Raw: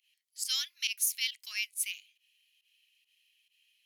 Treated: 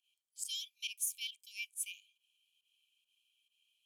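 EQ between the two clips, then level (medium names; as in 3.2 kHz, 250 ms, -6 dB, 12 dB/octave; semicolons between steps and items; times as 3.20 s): dynamic bell 4.4 kHz, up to -4 dB, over -48 dBFS, Q 2.1; rippled Chebyshev high-pass 2.3 kHz, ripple 9 dB; -3.0 dB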